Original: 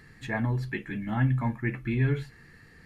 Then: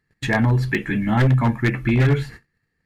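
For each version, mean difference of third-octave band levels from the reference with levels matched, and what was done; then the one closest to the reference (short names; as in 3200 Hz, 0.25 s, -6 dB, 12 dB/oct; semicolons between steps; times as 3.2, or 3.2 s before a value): 4.5 dB: gate -47 dBFS, range -36 dB; in parallel at +2 dB: compressor 6:1, threshold -40 dBFS, peak gain reduction 19 dB; on the sum: wavefolder -19 dBFS; gain +8.5 dB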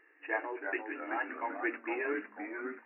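12.0 dB: G.711 law mismatch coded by A; FFT band-pass 290–2900 Hz; echoes that change speed 0.292 s, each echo -2 st, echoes 3, each echo -6 dB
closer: first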